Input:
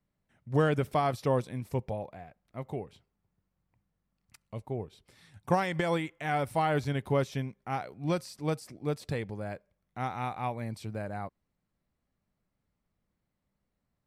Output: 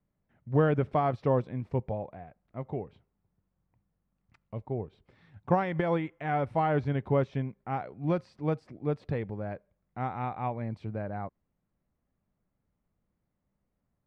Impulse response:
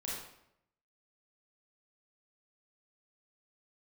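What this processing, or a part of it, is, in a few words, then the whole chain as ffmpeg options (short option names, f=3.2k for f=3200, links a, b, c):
phone in a pocket: -af "lowpass=3k,highshelf=f=2k:g=-9.5,volume=2dB"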